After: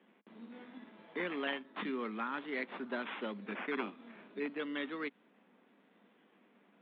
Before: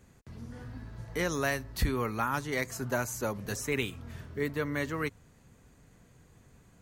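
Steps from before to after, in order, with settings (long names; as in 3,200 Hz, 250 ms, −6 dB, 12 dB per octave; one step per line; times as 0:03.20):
dynamic equaliser 760 Hz, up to −8 dB, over −46 dBFS, Q 0.99
sample-and-hold swept by an LFO 9×, swing 60% 0.32 Hz
Chebyshev band-pass filter 200–3,500 Hz, order 5
level −2.5 dB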